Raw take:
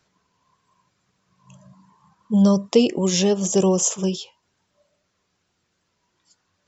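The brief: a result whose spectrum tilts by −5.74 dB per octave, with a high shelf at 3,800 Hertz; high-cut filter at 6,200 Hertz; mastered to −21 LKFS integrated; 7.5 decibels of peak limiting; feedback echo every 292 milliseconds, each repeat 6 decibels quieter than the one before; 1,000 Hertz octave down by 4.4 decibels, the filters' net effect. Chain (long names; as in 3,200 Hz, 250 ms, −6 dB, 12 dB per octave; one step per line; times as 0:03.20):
low-pass filter 6,200 Hz
parametric band 1,000 Hz −5 dB
high-shelf EQ 3,800 Hz −7.5 dB
brickwall limiter −12 dBFS
repeating echo 292 ms, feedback 50%, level −6 dB
level +0.5 dB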